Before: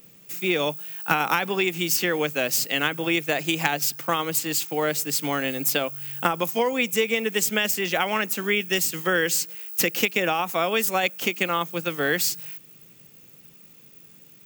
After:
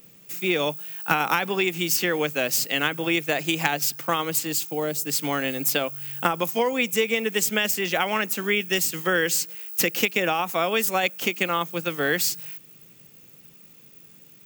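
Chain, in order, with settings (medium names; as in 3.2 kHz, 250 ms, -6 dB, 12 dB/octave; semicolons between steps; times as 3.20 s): 4.45–5.05 s: peaking EQ 1.8 kHz -3 dB -> -12 dB 2.2 oct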